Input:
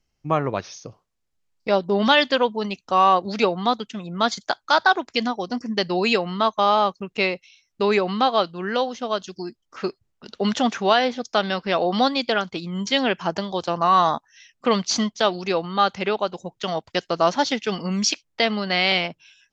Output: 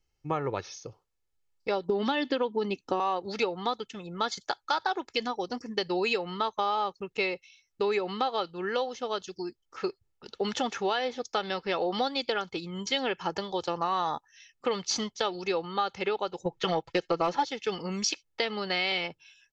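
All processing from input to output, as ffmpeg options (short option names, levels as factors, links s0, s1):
-filter_complex "[0:a]asettb=1/sr,asplit=3[s0][s1][s2];[s0]atrim=end=1.894[s3];[s1]atrim=start=1.89:end=3,asetpts=PTS-STARTPTS,afade=t=in:d=0.004:c=qsin,afade=t=out:st=1.106:d=0.004:c=qsin,equalizer=f=270:w=1:g=13.5,acrossover=split=750|5600[s4][s5][s6];[s4]acompressor=threshold=0.158:ratio=4[s7];[s5]acompressor=threshold=0.112:ratio=4[s8];[s6]acompressor=threshold=0.00251:ratio=4[s9];[s7][s8][s9]amix=inputs=3:normalize=0[s10];[s2]atrim=start=2.996[s11];[s3][s10]acrossfade=d=0.004:c1=hsin:c2=qsin[s12];[s12][s11]acrossfade=d=0.004:c1=qsin:c2=hsin,asettb=1/sr,asplit=3[s13][s14][s15];[s13]atrim=end=16.454[s16];[s14]atrim=start=16.45:end=17.45,asetpts=PTS-STARTPTS,afade=t=in:d=0.004:c=qsin,afade=t=out:st=0.996:d=0.004:c=qsin,aemphasis=mode=reproduction:type=50fm,aecho=1:1:6:0.98,atrim=end_sample=44100,acontrast=26[s17];[s15]atrim=start=17.446[s18];[s16][s17]acrossfade=d=0.004:c1=hsin:c2=qsin[s19];[s19][s18]acrossfade=d=0.004:c1=qsin:c2=hsin,aecho=1:1:2.3:0.5,acompressor=threshold=0.112:ratio=5,volume=0.531"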